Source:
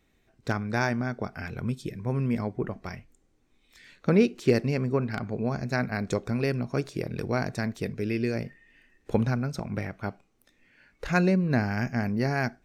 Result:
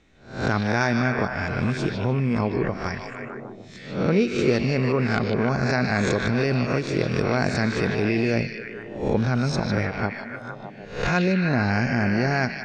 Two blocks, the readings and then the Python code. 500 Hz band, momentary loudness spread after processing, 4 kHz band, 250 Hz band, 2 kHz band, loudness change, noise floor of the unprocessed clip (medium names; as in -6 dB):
+5.0 dB, 13 LU, +9.0 dB, +4.5 dB, +8.0 dB, +5.0 dB, -68 dBFS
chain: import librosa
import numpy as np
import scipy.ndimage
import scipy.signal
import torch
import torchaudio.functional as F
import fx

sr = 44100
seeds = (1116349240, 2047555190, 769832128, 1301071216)

p1 = fx.spec_swells(x, sr, rise_s=0.46)
p2 = scipy.signal.sosfilt(scipy.signal.butter(4, 7100.0, 'lowpass', fs=sr, output='sos'), p1)
p3 = fx.over_compress(p2, sr, threshold_db=-29.0, ratio=-1.0)
p4 = p2 + (p3 * librosa.db_to_amplitude(2.0))
p5 = fx.echo_stepped(p4, sr, ms=151, hz=3400.0, octaves=-0.7, feedback_pct=70, wet_db=-0.5)
p6 = fx.end_taper(p5, sr, db_per_s=180.0)
y = p6 * librosa.db_to_amplitude(-1.5)